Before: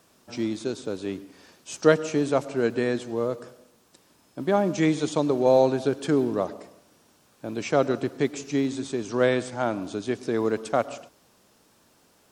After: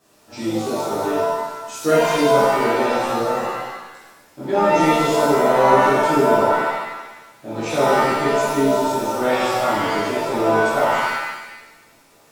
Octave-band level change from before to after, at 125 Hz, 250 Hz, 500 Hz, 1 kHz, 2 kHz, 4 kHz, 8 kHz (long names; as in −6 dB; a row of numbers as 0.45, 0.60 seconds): +2.5, +3.5, +6.5, +14.5, +11.5, +9.5, +8.0 decibels